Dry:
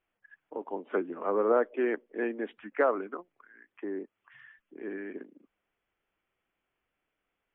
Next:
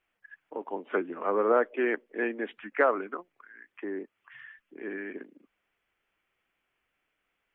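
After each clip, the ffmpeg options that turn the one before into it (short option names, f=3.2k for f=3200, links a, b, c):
-af "equalizer=f=2.3k:t=o:w=2:g=6.5"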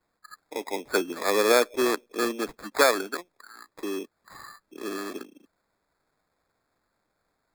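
-af "acrusher=samples=15:mix=1:aa=0.000001,volume=3.5dB"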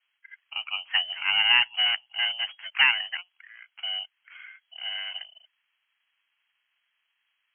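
-af "lowpass=f=2.8k:t=q:w=0.5098,lowpass=f=2.8k:t=q:w=0.6013,lowpass=f=2.8k:t=q:w=0.9,lowpass=f=2.8k:t=q:w=2.563,afreqshift=-3300,lowshelf=f=130:g=-5.5"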